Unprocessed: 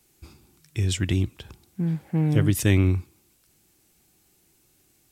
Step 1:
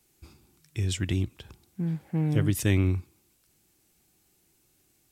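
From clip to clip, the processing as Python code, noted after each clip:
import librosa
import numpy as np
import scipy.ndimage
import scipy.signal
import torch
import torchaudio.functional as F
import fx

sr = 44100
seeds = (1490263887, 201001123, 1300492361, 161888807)

y = fx.end_taper(x, sr, db_per_s=540.0)
y = F.gain(torch.from_numpy(y), -4.0).numpy()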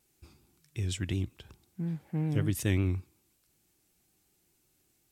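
y = fx.vibrato(x, sr, rate_hz=5.4, depth_cents=56.0)
y = F.gain(torch.from_numpy(y), -4.5).numpy()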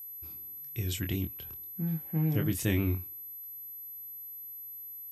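y = fx.doubler(x, sr, ms=25.0, db=-6)
y = y + 10.0 ** (-41.0 / 20.0) * np.sin(2.0 * np.pi * 12000.0 * np.arange(len(y)) / sr)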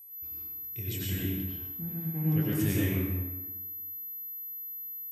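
y = fx.rev_plate(x, sr, seeds[0], rt60_s=1.3, hf_ratio=0.65, predelay_ms=80, drr_db=-5.5)
y = F.gain(torch.from_numpy(y), -6.0).numpy()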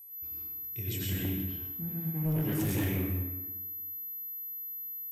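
y = np.clip(x, -10.0 ** (-26.5 / 20.0), 10.0 ** (-26.5 / 20.0))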